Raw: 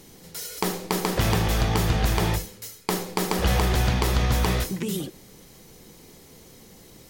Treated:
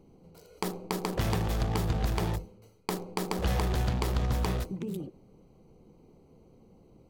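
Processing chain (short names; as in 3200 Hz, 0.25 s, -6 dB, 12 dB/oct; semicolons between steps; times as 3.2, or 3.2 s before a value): Wiener smoothing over 25 samples; gain -6 dB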